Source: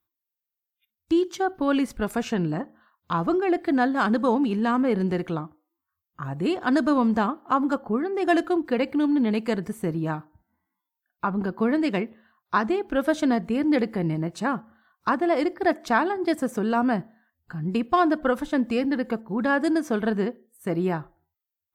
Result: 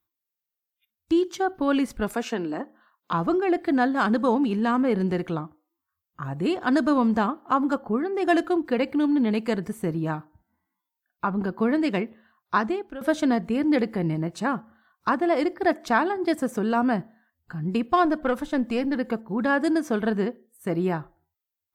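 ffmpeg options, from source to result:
ffmpeg -i in.wav -filter_complex "[0:a]asettb=1/sr,asplit=3[link_01][link_02][link_03];[link_01]atrim=end=2.144[link_04];[link_02]atrim=start=2.14:end=3.13,asetpts=PTS-STARTPTS,afade=type=in:duration=0.004:curve=qsin,afade=type=out:start_time=0.986:duration=0.004:curve=qsin,highpass=frequency=240:width=0.5412,highpass=frequency=240:width=1.3066[link_05];[link_03]atrim=start=3.126[link_06];[link_04][link_05]acrossfade=duration=0.004:curve1=hsin:curve2=qsin[link_07];[link_07][link_06]acrossfade=duration=0.004:curve1=qsin:curve2=hsin,asettb=1/sr,asplit=3[link_08][link_09][link_10];[link_08]atrim=end=18.054[link_11];[link_09]atrim=start=18.05:end=18.95,asetpts=PTS-STARTPTS,afade=type=in:duration=0.004:curve=qsin,afade=type=out:start_time=0.896:duration=0.004:curve=qsin,aeval=exprs='(tanh(5.01*val(0)+0.3)-tanh(0.3))/5.01':channel_layout=same[link_12];[link_10]atrim=start=18.946[link_13];[link_11][link_12]acrossfade=duration=0.004:curve1=hsin:curve2=qsin[link_14];[link_14][link_13]acrossfade=duration=0.004:curve1=qsin:curve2=hsin,asplit=2[link_15][link_16];[link_15]atrim=end=13.01,asetpts=PTS-STARTPTS,afade=type=out:start_time=12.6:duration=0.41:silence=0.149624[link_17];[link_16]atrim=start=13.01,asetpts=PTS-STARTPTS,afade=type=in:duration=0.004:curve=hsin:silence=0.149624[link_18];[link_17][link_18]concat=n=2:v=0:a=1" out.wav

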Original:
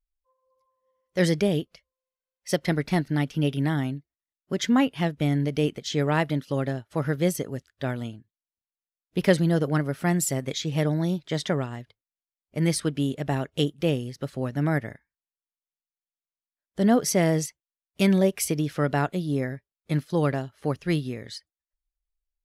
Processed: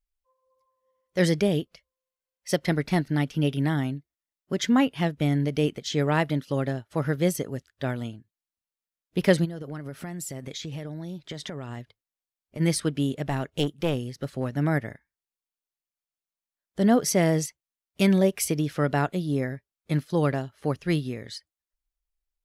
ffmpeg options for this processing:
ffmpeg -i in.wav -filter_complex "[0:a]asplit=3[link_01][link_02][link_03];[link_01]afade=type=out:start_time=9.44:duration=0.02[link_04];[link_02]acompressor=threshold=-31dB:ratio=16:attack=3.2:release=140:knee=1:detection=peak,afade=type=in:start_time=9.44:duration=0.02,afade=type=out:start_time=12.59:duration=0.02[link_05];[link_03]afade=type=in:start_time=12.59:duration=0.02[link_06];[link_04][link_05][link_06]amix=inputs=3:normalize=0,asettb=1/sr,asplit=3[link_07][link_08][link_09];[link_07]atrim=end=13.254[link_10];[link_08]atrim=start=13.25:end=14.55,asetpts=PTS-STARTPTS,afade=type=in:duration=0.004:curve=qsin,afade=type=out:start_time=1.296:duration=0.004:curve=qsin,aeval=exprs='clip(val(0),-1,0.0596)':channel_layout=same[link_11];[link_09]atrim=start=14.546[link_12];[link_10][link_11]acrossfade=duration=0.004:curve1=hsin:curve2=qsin[link_13];[link_13][link_12]acrossfade=duration=0.004:curve1=qsin:curve2=hsin" out.wav

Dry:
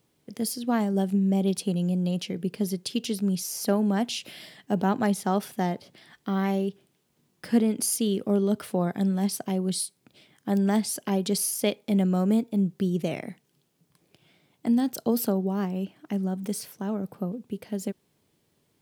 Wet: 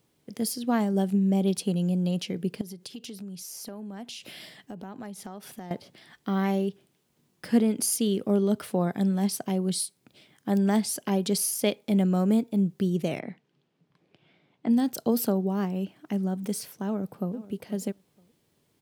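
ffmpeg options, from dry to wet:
ffmpeg -i in.wav -filter_complex "[0:a]asettb=1/sr,asplit=3[link_01][link_02][link_03];[link_01]atrim=end=2.614[link_04];[link_02]atrim=start=2.61:end=5.71,asetpts=PTS-STARTPTS,afade=type=in:duration=0.004:curve=qsin,afade=type=out:start_time=3.096:duration=0.004:curve=qsin,acompressor=threshold=-37dB:ratio=6:attack=3.2:release=140:knee=1:detection=peak[link_05];[link_03]atrim=start=5.706[link_06];[link_04][link_05]acrossfade=duration=0.004:curve1=hsin:curve2=qsin[link_07];[link_07][link_06]acrossfade=duration=0.004:curve1=qsin:curve2=hsin,asplit=3[link_08][link_09][link_10];[link_08]afade=type=out:start_time=13.19:duration=0.02[link_11];[link_09]highpass=110,lowpass=3200,afade=type=in:start_time=13.19:duration=0.02,afade=type=out:start_time=14.69:duration=0.02[link_12];[link_10]afade=type=in:start_time=14.69:duration=0.02[link_13];[link_11][link_12][link_13]amix=inputs=3:normalize=0,asplit=2[link_14][link_15];[link_15]afade=type=in:start_time=16.85:duration=0.01,afade=type=out:start_time=17.35:duration=0.01,aecho=0:1:480|960:0.133352|0.0266704[link_16];[link_14][link_16]amix=inputs=2:normalize=0" out.wav

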